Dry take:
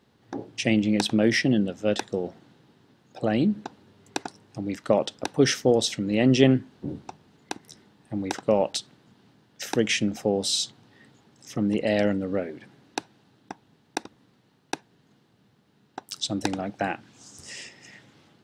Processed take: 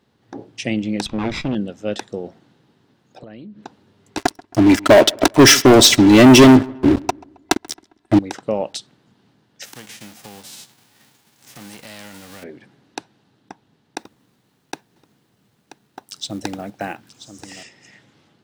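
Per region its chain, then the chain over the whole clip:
1.06–1.55 minimum comb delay 0.82 ms + LPF 4500 Hz
3.19–3.63 LPF 5200 Hz + notch 800 Hz, Q 6 + compressor 8:1, threshold -35 dBFS
4.17–8.19 comb 3 ms, depth 80% + sample leveller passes 5 + darkening echo 0.134 s, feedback 47%, low-pass 2500 Hz, level -23 dB
9.64–12.42 spectral whitening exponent 0.3 + notch 1300 Hz, Q 24 + compressor 3:1, threshold -40 dBFS
13.98–17.63 companded quantiser 6-bit + echo 0.982 s -13 dB
whole clip: dry

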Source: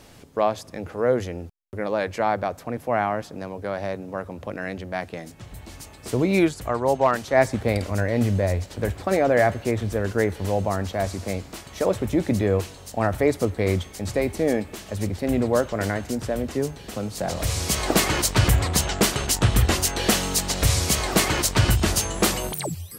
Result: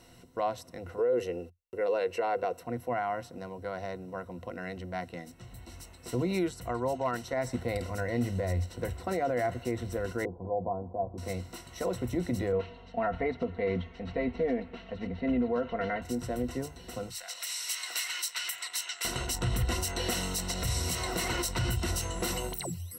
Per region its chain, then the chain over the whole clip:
0.98–2.61 low shelf 190 Hz -12 dB + small resonant body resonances 440/2700 Hz, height 15 dB, ringing for 35 ms
10.25–11.18 steep low-pass 980 Hz 48 dB/oct + low shelf 110 Hz -8.5 dB + doubler 17 ms -12.5 dB
12.52–16.02 LPF 3300 Hz 24 dB/oct + comb 4.4 ms, depth 70%
17.1–19.05 Chebyshev high-pass 2100 Hz + three-band squash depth 40%
whole clip: ripple EQ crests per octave 2, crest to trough 12 dB; limiter -12 dBFS; gain -9 dB

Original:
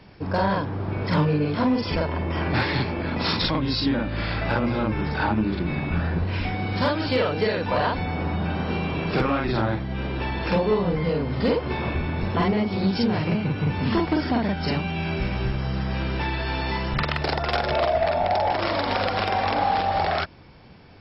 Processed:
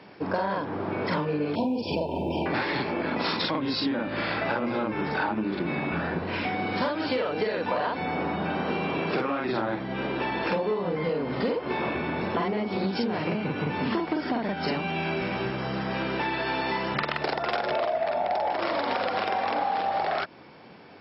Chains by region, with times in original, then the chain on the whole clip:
1.55–2.46 low shelf 150 Hz +8 dB + short-mantissa float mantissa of 6-bit + brick-wall FIR band-stop 990–2300 Hz
whole clip: HPF 250 Hz 12 dB/oct; high shelf 4500 Hz -9.5 dB; compressor, threshold -28 dBFS; gain +4 dB

